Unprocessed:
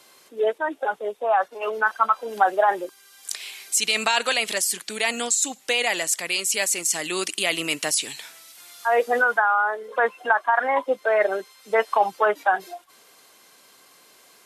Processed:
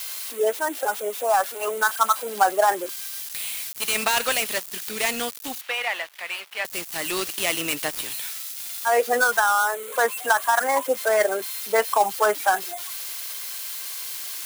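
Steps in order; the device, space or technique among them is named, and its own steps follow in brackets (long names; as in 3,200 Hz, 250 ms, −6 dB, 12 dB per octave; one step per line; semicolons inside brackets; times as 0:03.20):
budget class-D amplifier (gap after every zero crossing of 0.094 ms; spike at every zero crossing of −19 dBFS)
0:05.61–0:06.65: three-way crossover with the lows and the highs turned down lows −21 dB, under 590 Hz, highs −17 dB, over 3,400 Hz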